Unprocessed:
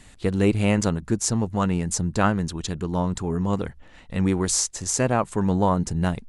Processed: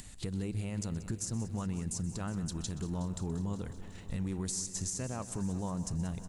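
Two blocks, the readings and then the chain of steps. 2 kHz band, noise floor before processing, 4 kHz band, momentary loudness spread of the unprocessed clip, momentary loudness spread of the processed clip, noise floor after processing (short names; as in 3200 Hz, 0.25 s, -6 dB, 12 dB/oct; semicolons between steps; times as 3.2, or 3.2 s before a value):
-19.0 dB, -49 dBFS, -13.0 dB, 6 LU, 3 LU, -47 dBFS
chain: gate -45 dBFS, range -10 dB; tone controls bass +7 dB, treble +10 dB; compressor 4:1, threshold -34 dBFS, peak gain reduction 19.5 dB; limiter -26.5 dBFS, peak gain reduction 11 dB; upward compressor, threshold -44 dBFS; echo 0.125 s -18 dB; lo-fi delay 0.183 s, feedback 80%, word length 11-bit, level -15 dB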